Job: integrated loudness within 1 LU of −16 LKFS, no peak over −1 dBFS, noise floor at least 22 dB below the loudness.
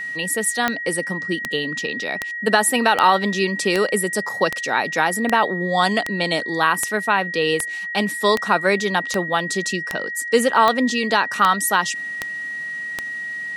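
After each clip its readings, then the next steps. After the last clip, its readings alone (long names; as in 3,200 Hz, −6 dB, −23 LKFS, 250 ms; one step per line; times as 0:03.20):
number of clicks 17; interfering tone 1,900 Hz; level of the tone −26 dBFS; integrated loudness −20.0 LKFS; sample peak −1.0 dBFS; target loudness −16.0 LKFS
→ click removal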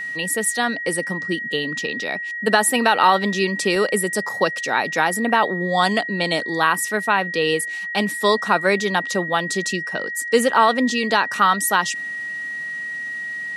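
number of clicks 0; interfering tone 1,900 Hz; level of the tone −26 dBFS
→ notch filter 1,900 Hz, Q 30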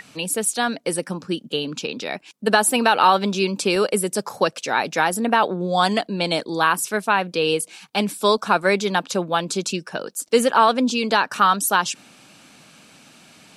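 interfering tone none found; integrated loudness −20.5 LKFS; sample peak −1.5 dBFS; target loudness −16.0 LKFS
→ level +4.5 dB
brickwall limiter −1 dBFS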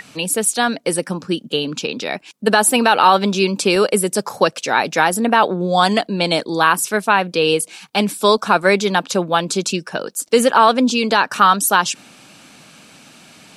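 integrated loudness −16.5 LKFS; sample peak −1.0 dBFS; background noise floor −49 dBFS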